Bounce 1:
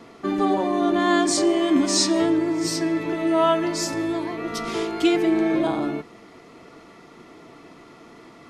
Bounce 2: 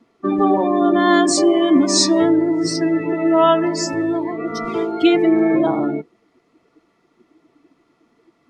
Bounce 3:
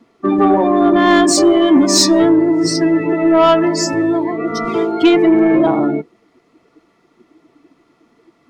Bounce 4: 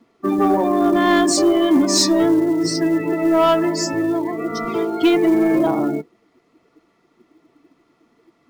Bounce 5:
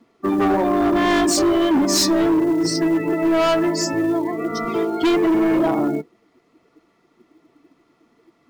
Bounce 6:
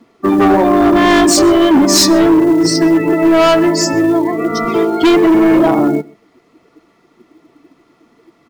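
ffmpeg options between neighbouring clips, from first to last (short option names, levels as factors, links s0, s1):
-af "afftdn=nr=21:nf=-29,volume=1.88"
-af "acontrast=54,volume=0.891"
-af "acrusher=bits=8:mode=log:mix=0:aa=0.000001,volume=0.596"
-af "asoftclip=type=hard:threshold=0.2"
-af "aecho=1:1:129:0.0631,volume=2.51"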